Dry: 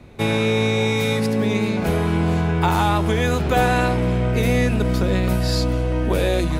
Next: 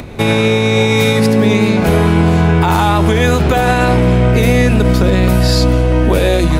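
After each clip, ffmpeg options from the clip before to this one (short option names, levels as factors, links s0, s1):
-af "acompressor=mode=upward:threshold=0.0251:ratio=2.5,alimiter=level_in=3.35:limit=0.891:release=50:level=0:latency=1,volume=0.891"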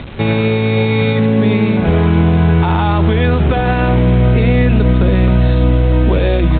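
-af "aresample=8000,acrusher=bits=4:mix=0:aa=0.000001,aresample=44100,lowshelf=f=250:g=6.5,volume=0.596"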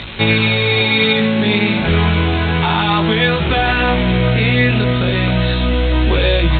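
-af "crystalizer=i=10:c=0,flanger=delay=18:depth=6.1:speed=0.31,volume=0.891"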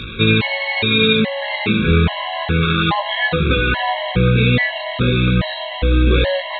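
-af "afftfilt=real='re*gt(sin(2*PI*1.2*pts/sr)*(1-2*mod(floor(b*sr/1024/550),2)),0)':imag='im*gt(sin(2*PI*1.2*pts/sr)*(1-2*mod(floor(b*sr/1024/550),2)),0)':win_size=1024:overlap=0.75,volume=1.12"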